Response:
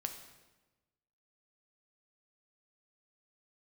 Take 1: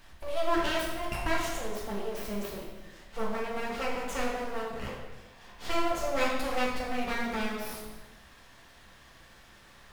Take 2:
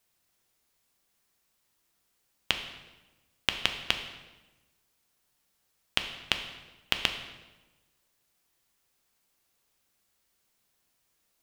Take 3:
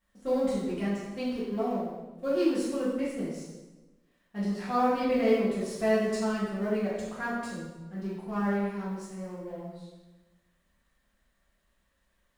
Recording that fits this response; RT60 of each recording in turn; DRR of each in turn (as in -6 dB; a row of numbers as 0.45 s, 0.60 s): 2; 1.1 s, 1.1 s, 1.1 s; -3.5 dB, 5.0 dB, -10.0 dB